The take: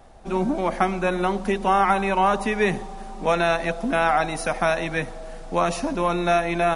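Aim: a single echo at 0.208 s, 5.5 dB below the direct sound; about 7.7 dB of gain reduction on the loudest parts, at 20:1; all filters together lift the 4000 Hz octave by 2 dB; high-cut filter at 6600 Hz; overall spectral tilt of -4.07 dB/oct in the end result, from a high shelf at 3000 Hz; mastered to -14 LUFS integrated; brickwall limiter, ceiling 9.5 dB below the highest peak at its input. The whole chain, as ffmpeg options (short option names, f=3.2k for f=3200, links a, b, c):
-af "lowpass=6.6k,highshelf=f=3k:g=-4.5,equalizer=f=4k:t=o:g=6,acompressor=threshold=-22dB:ratio=20,alimiter=limit=-19.5dB:level=0:latency=1,aecho=1:1:208:0.531,volume=15.5dB"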